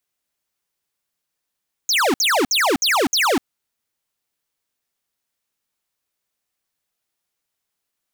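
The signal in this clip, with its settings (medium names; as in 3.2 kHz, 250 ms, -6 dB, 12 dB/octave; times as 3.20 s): burst of laser zaps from 6.9 kHz, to 230 Hz, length 0.25 s square, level -17 dB, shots 5, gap 0.06 s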